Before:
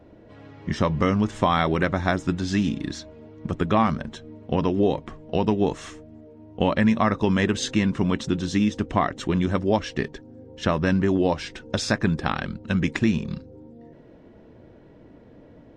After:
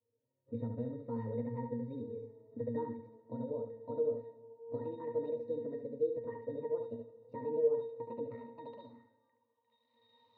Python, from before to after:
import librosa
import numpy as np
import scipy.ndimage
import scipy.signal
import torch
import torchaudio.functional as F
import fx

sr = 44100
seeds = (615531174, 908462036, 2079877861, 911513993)

p1 = fx.speed_glide(x, sr, from_pct=129, to_pct=175)
p2 = fx.recorder_agc(p1, sr, target_db=-11.5, rise_db_per_s=9.8, max_gain_db=30)
p3 = fx.notch(p2, sr, hz=1100.0, q=12.0)
p4 = fx.noise_reduce_blind(p3, sr, reduce_db=17)
p5 = fx.graphic_eq_15(p4, sr, hz=(100, 400, 4000), db=(11, -4, 4))
p6 = fx.quant_dither(p5, sr, seeds[0], bits=6, dither='none')
p7 = p5 + (p6 * librosa.db_to_amplitude(-6.0))
p8 = fx.octave_resonator(p7, sr, note='A#', decay_s=0.21)
p9 = p8 + 10.0 ** (-6.5 / 20.0) * np.pad(p8, (int(72 * sr / 1000.0), 0))[:len(p8)]
p10 = fx.filter_sweep_bandpass(p9, sr, from_hz=450.0, to_hz=3600.0, start_s=8.2, end_s=9.8, q=3.2)
p11 = fx.rev_schroeder(p10, sr, rt60_s=1.6, comb_ms=27, drr_db=13.5)
y = p11 * librosa.db_to_amplitude(1.0)